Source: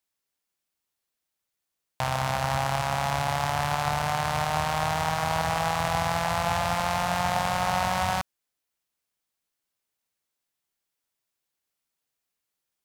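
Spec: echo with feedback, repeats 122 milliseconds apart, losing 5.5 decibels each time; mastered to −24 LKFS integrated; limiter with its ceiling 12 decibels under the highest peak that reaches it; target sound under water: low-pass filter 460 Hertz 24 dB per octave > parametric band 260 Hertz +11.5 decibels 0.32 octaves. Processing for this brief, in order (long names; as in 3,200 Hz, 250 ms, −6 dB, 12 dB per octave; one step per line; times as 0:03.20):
brickwall limiter −22 dBFS
low-pass filter 460 Hz 24 dB per octave
parametric band 260 Hz +11.5 dB 0.32 octaves
repeating echo 122 ms, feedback 53%, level −5.5 dB
level +17 dB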